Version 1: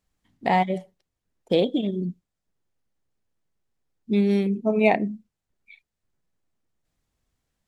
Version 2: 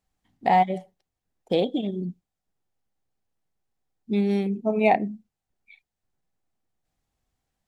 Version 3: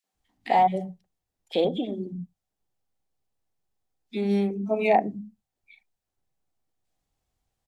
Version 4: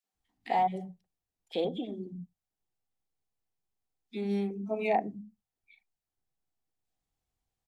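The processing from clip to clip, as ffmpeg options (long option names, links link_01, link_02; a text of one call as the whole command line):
ffmpeg -i in.wav -af "equalizer=frequency=770:width=5.3:gain=8,volume=-2.5dB" out.wav
ffmpeg -i in.wav -filter_complex "[0:a]acrossover=split=210|1700[link_01][link_02][link_03];[link_02]adelay=40[link_04];[link_01]adelay=130[link_05];[link_05][link_04][link_03]amix=inputs=3:normalize=0" out.wav
ffmpeg -i in.wav -af "bandreject=frequency=580:width=12,volume=-7dB" out.wav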